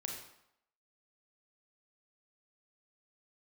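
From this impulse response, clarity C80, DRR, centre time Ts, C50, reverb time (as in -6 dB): 6.0 dB, 0.0 dB, 41 ms, 3.5 dB, 0.75 s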